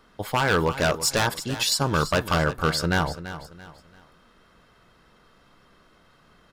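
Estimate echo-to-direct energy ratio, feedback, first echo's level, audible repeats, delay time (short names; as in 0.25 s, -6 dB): -12.5 dB, 34%, -13.0 dB, 3, 0.337 s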